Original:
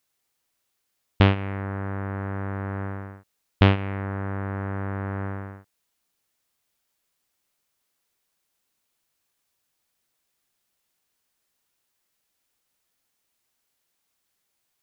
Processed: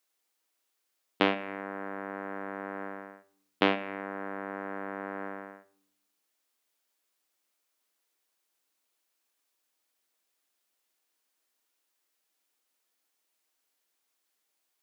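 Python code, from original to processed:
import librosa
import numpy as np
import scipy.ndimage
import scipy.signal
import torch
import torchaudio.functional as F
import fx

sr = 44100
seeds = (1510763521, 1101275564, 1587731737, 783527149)

y = scipy.signal.sosfilt(scipy.signal.butter(4, 250.0, 'highpass', fs=sr, output='sos'), x)
y = fx.room_shoebox(y, sr, seeds[0], volume_m3=890.0, walls='furnished', distance_m=0.56)
y = y * 10.0 ** (-3.0 / 20.0)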